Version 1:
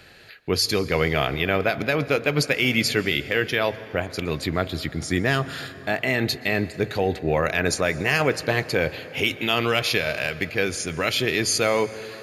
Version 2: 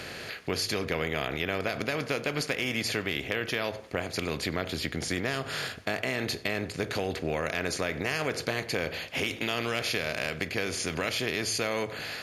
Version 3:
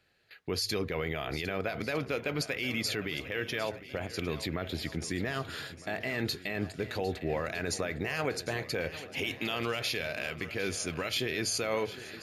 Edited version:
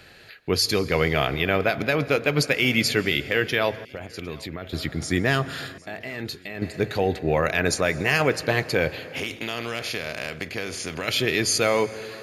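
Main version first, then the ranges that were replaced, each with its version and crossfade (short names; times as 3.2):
1
3.85–4.73 from 3
5.78–6.62 from 3
9.16–11.08 from 2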